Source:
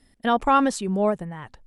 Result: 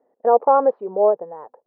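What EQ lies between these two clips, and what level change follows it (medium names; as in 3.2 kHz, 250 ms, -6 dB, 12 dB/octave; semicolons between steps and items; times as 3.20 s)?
resonant high-pass 480 Hz, resonance Q 4.9; four-pole ladder low-pass 1.1 kHz, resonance 40%; distance through air 160 m; +5.5 dB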